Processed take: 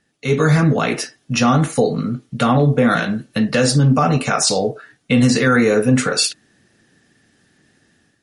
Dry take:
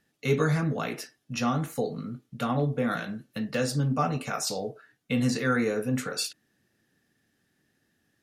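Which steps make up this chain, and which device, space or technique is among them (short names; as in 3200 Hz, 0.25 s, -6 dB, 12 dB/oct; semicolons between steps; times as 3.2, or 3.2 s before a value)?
low-bitrate web radio (AGC gain up to 9 dB; limiter -11 dBFS, peak gain reduction 6.5 dB; gain +6 dB; MP3 48 kbps 44100 Hz)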